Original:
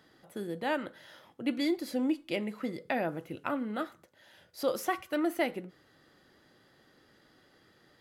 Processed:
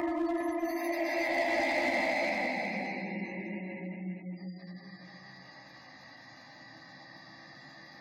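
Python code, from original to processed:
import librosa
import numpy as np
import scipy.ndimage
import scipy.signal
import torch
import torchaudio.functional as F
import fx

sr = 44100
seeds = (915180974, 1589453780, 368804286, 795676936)

p1 = fx.self_delay(x, sr, depth_ms=0.11)
p2 = scipy.signal.sosfilt(scipy.signal.butter(2, 150.0, 'highpass', fs=sr, output='sos'), p1)
p3 = fx.high_shelf(p2, sr, hz=3100.0, db=3.5)
p4 = fx.fixed_phaser(p3, sr, hz=2100.0, stages=8)
p5 = fx.comb_fb(p4, sr, f0_hz=410.0, decay_s=0.4, harmonics='odd', damping=0.0, mix_pct=50)
p6 = fx.paulstretch(p5, sr, seeds[0], factor=9.6, window_s=0.25, from_s=5.25)
p7 = fx.spec_gate(p6, sr, threshold_db=-25, keep='strong')
p8 = 10.0 ** (-39.0 / 20.0) * (np.abs((p7 / 10.0 ** (-39.0 / 20.0) + 3.0) % 4.0 - 2.0) - 1.0)
p9 = p7 + (p8 * 10.0 ** (-6.0 / 20.0))
p10 = fx.doubler(p9, sr, ms=15.0, db=-7.0)
p11 = p10 + 10.0 ** (-6.5 / 20.0) * np.pad(p10, (int(404 * sr / 1000.0), 0))[:len(p10)]
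p12 = fx.band_squash(p11, sr, depth_pct=40)
y = p12 * 10.0 ** (7.0 / 20.0)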